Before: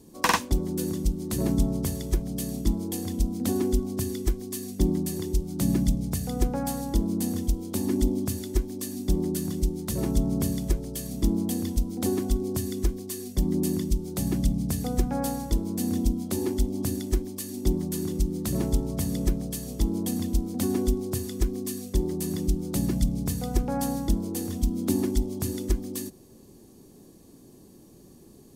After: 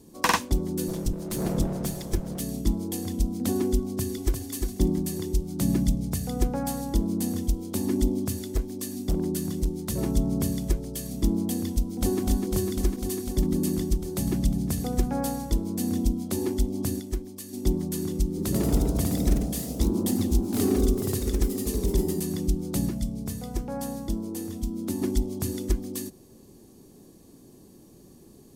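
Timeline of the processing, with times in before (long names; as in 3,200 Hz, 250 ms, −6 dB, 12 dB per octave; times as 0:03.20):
0:00.88–0:02.40: lower of the sound and its delayed copy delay 5.8 ms
0:03.82–0:04.52: delay throw 350 ms, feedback 20%, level −4.5 dB
0:08.25–0:09.81: hard clipping −19 dBFS
0:11.73–0:12.21: delay throw 250 ms, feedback 85%, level −4.5 dB
0:17.00–0:17.53: clip gain −5 dB
0:18.27–0:22.33: delay with pitch and tempo change per echo 100 ms, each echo +1 semitone, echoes 3
0:22.89–0:25.02: tuned comb filter 110 Hz, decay 0.2 s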